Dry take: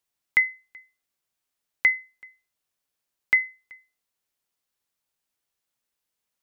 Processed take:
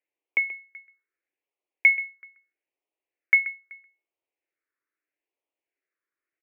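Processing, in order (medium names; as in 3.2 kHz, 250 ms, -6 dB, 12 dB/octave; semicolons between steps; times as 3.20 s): phase shifter stages 4, 0.78 Hz, lowest notch 600–1400 Hz; on a send: delay 131 ms -15.5 dB; on the sum: mistuned SSB +150 Hz 150–2300 Hz; trim +3 dB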